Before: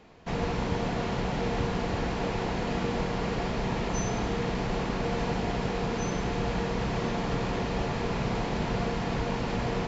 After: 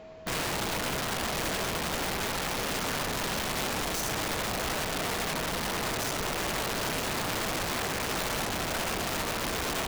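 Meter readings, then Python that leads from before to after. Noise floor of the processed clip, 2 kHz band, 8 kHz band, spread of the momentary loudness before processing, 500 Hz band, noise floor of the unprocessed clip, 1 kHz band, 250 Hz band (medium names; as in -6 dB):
-33 dBFS, +4.5 dB, no reading, 1 LU, -3.5 dB, -32 dBFS, 0.0 dB, -6.0 dB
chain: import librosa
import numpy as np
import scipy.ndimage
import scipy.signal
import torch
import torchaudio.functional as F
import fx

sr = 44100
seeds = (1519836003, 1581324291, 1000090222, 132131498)

y = fx.rider(x, sr, range_db=3, speed_s=0.5)
y = (np.mod(10.0 ** (26.0 / 20.0) * y + 1.0, 2.0) - 1.0) / 10.0 ** (26.0 / 20.0)
y = y + 10.0 ** (-46.0 / 20.0) * np.sin(2.0 * np.pi * 640.0 * np.arange(len(y)) / sr)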